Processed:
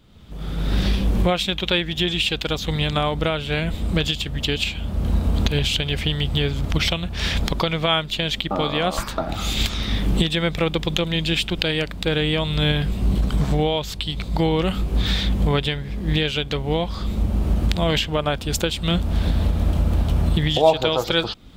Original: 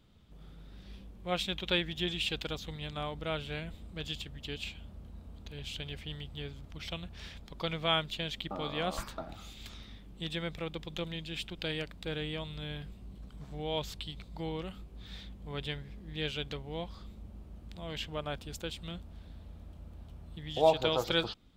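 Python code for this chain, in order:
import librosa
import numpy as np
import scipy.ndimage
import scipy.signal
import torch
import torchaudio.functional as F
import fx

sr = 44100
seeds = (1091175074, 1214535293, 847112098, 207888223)

y = fx.recorder_agc(x, sr, target_db=-20.5, rise_db_per_s=30.0, max_gain_db=30)
y = y * librosa.db_to_amplitude(9.0)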